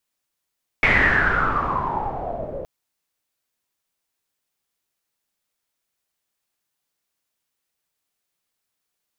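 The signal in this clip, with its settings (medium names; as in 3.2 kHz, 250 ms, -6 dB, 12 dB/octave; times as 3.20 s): swept filtered noise pink, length 1.82 s lowpass, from 2.2 kHz, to 530 Hz, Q 10, exponential, gain ramp -15.5 dB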